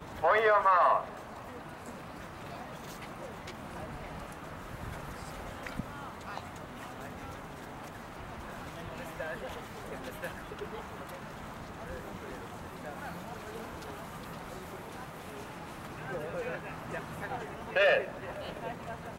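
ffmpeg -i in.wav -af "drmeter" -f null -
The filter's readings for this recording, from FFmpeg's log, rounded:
Channel 1: DR: 11.8
Overall DR: 11.8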